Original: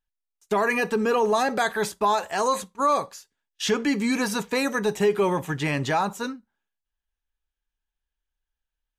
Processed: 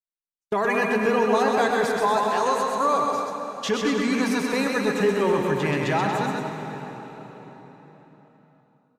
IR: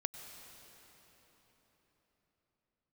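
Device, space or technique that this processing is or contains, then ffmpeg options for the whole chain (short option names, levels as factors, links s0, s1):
swimming-pool hall: -filter_complex "[0:a]aecho=1:1:130|234|317.2|383.8|437:0.631|0.398|0.251|0.158|0.1,agate=range=0.0316:threshold=0.0316:ratio=16:detection=peak[s0];[1:a]atrim=start_sample=2205[s1];[s0][s1]afir=irnorm=-1:irlink=0,highshelf=f=5900:g=-6.5"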